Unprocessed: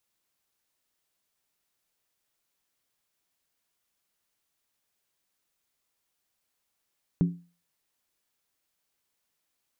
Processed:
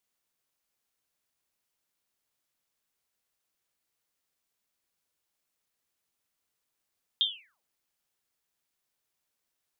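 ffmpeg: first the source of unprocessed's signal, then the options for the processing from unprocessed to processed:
-f lavfi -i "aevalsrc='0.15*pow(10,-3*t/0.35)*sin(2*PI*173*t)+0.0531*pow(10,-3*t/0.277)*sin(2*PI*275.8*t)+0.0188*pow(10,-3*t/0.239)*sin(2*PI*369.5*t)+0.00668*pow(10,-3*t/0.231)*sin(2*PI*397.2*t)+0.00237*pow(10,-3*t/0.215)*sin(2*PI*459*t)':d=0.63:s=44100"
-af "aeval=exprs='val(0)*sin(2*PI*1800*n/s+1800*0.9/0.97*sin(2*PI*0.97*n/s))':c=same"

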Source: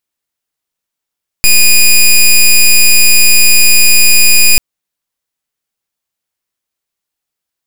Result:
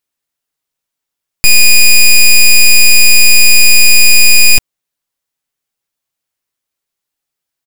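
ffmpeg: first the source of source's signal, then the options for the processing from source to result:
-f lavfi -i "aevalsrc='0.596*(2*lt(mod(2460*t,1),0.12)-1)':d=3.14:s=44100"
-af "aecho=1:1:7.3:0.31"

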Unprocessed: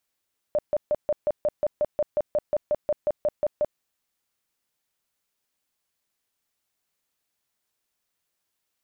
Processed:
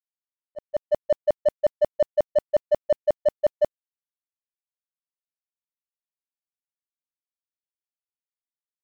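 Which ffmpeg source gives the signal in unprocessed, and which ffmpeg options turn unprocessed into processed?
-f lavfi -i "aevalsrc='0.112*sin(2*PI*598*mod(t,0.18))*lt(mod(t,0.18),22/598)':d=3.24:s=44100"
-filter_complex "[0:a]asplit=2[s0][s1];[s1]asoftclip=type=hard:threshold=0.0224,volume=0.398[s2];[s0][s2]amix=inputs=2:normalize=0,dynaudnorm=f=150:g=9:m=2,agate=range=0.00708:threshold=0.126:ratio=16:detection=peak"

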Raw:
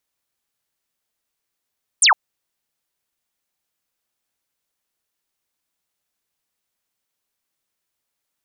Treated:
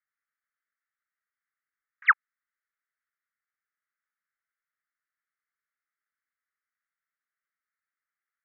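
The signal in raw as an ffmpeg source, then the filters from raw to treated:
-f lavfi -i "aevalsrc='0.335*clip(t/0.002,0,1)*clip((0.11-t)/0.002,0,1)*sin(2*PI*9900*0.11/log(750/9900)*(exp(log(750/9900)*t/0.11)-1))':d=0.11:s=44100"
-af "acrusher=bits=3:mode=log:mix=0:aa=0.000001,asuperpass=centerf=1600:order=8:qfactor=1.8"

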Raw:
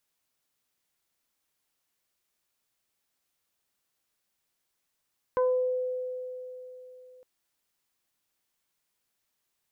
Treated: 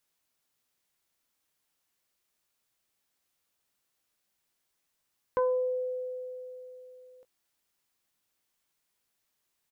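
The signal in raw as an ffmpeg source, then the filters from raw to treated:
-f lavfi -i "aevalsrc='0.1*pow(10,-3*t/3.59)*sin(2*PI*506*t+1*pow(10,-3*t/0.54)*sin(2*PI*1*506*t))':d=1.86:s=44100"
-filter_complex "[0:a]asplit=2[s0][s1];[s1]adelay=19,volume=0.237[s2];[s0][s2]amix=inputs=2:normalize=0"

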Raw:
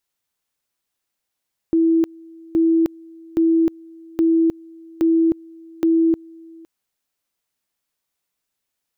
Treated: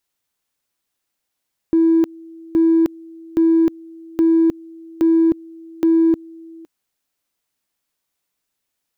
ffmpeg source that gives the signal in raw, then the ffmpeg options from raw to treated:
-f lavfi -i "aevalsrc='pow(10,(-12.5-26*gte(mod(t,0.82),0.31))/20)*sin(2*PI*328*t)':d=4.92:s=44100"
-filter_complex "[0:a]equalizer=f=290:t=o:w=0.32:g=2.5,asplit=2[s0][s1];[s1]asoftclip=type=hard:threshold=0.0944,volume=0.266[s2];[s0][s2]amix=inputs=2:normalize=0"

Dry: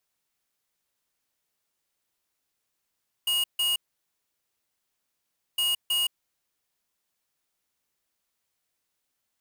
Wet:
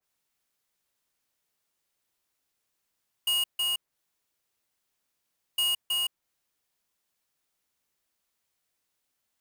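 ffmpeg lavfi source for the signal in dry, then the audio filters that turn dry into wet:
-f lavfi -i "aevalsrc='0.0562*(2*lt(mod(2870*t,1),0.5)-1)*clip(min(mod(mod(t,2.31),0.32),0.17-mod(mod(t,2.31),0.32))/0.005,0,1)*lt(mod(t,2.31),0.64)':d=4.62:s=44100"
-af "adynamicequalizer=threshold=0.00891:dfrequency=2200:dqfactor=0.7:tfrequency=2200:tqfactor=0.7:attack=5:release=100:ratio=0.375:range=3:mode=cutabove:tftype=highshelf"

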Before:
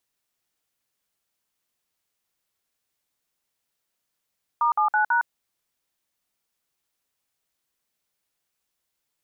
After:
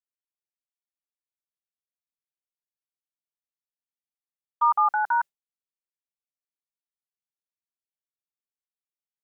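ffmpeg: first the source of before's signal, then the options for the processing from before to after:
-f lavfi -i "aevalsrc='0.0944*clip(min(mod(t,0.164),0.11-mod(t,0.164))/0.002,0,1)*(eq(floor(t/0.164),0)*(sin(2*PI*941*mod(t,0.164))+sin(2*PI*1209*mod(t,0.164)))+eq(floor(t/0.164),1)*(sin(2*PI*852*mod(t,0.164))+sin(2*PI*1209*mod(t,0.164)))+eq(floor(t/0.164),2)*(sin(2*PI*852*mod(t,0.164))+sin(2*PI*1477*mod(t,0.164)))+eq(floor(t/0.164),3)*(sin(2*PI*941*mod(t,0.164))+sin(2*PI*1477*mod(t,0.164))))':d=0.656:s=44100"
-af "agate=range=0.0224:threshold=0.0631:ratio=3:detection=peak,aecho=1:1:5.1:0.5"

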